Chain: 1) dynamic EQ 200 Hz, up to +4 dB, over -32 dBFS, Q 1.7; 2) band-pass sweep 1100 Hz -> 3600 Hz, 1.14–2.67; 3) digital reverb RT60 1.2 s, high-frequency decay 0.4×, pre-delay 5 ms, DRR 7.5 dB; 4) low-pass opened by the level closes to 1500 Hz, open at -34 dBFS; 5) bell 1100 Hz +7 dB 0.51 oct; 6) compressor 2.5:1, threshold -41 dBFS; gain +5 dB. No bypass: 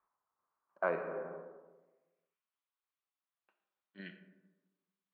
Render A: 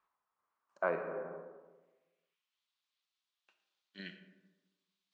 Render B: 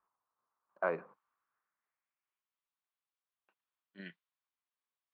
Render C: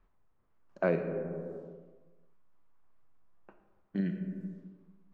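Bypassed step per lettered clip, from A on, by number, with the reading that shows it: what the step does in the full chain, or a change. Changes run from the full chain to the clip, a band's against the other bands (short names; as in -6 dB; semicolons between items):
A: 4, 4 kHz band +7.0 dB; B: 3, momentary loudness spread change -3 LU; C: 2, 125 Hz band +15.5 dB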